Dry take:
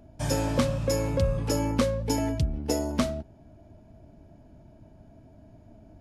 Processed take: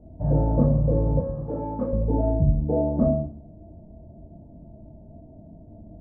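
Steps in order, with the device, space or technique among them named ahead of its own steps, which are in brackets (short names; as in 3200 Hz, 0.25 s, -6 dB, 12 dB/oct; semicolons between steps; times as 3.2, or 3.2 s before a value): next room (LPF 670 Hz 24 dB/oct; reverb RT60 0.45 s, pre-delay 7 ms, DRR -6 dB); 1.2–1.93 tilt +3.5 dB/oct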